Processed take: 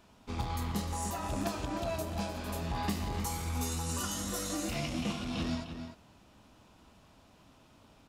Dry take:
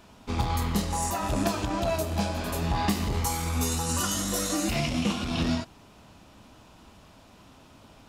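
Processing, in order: echo from a far wall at 52 m, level -8 dB; trim -8 dB

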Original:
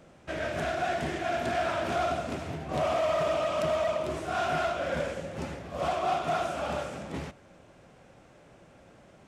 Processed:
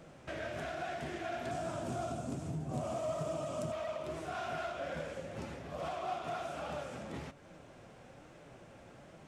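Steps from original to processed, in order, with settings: 1.51–3.72 s: graphic EQ 125/250/2000/4000/8000 Hz +10/+6/-8/-4/+11 dB; compression 2:1, threshold -45 dBFS, peak gain reduction 13 dB; flange 1.2 Hz, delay 5.9 ms, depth 3.4 ms, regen +69%; trim +4.5 dB

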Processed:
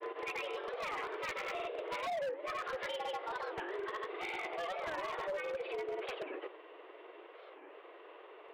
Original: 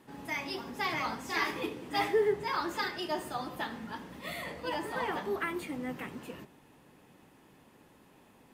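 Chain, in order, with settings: tracing distortion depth 0.15 ms; in parallel at +2 dB: peak limiter -28.5 dBFS, peak gain reduction 10.5 dB; on the sum: dynamic bell 1.1 kHz, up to -3 dB, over -39 dBFS, Q 0.84; mistuned SSB +180 Hz 160–3100 Hz; granulator 100 ms, grains 20 per s, pitch spread up and down by 0 st; compression 3:1, threshold -39 dBFS, peak gain reduction 13.5 dB; wavefolder -33.5 dBFS; warped record 45 rpm, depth 250 cents; trim +1 dB

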